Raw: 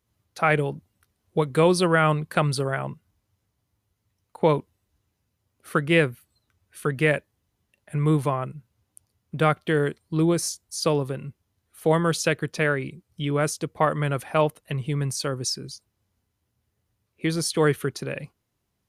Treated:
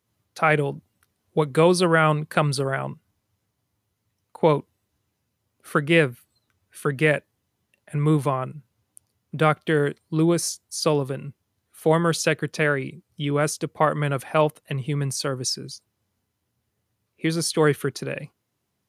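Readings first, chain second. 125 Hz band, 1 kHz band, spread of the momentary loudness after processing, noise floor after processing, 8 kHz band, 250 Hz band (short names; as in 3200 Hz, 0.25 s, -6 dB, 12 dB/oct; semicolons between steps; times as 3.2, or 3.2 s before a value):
+0.5 dB, +1.5 dB, 12 LU, -77 dBFS, +1.5 dB, +1.0 dB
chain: HPF 100 Hz; gain +1.5 dB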